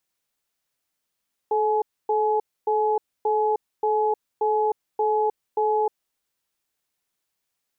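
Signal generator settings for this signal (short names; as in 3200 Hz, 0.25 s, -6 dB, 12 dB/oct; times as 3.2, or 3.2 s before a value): cadence 432 Hz, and 847 Hz, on 0.31 s, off 0.27 s, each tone -21.5 dBFS 4.50 s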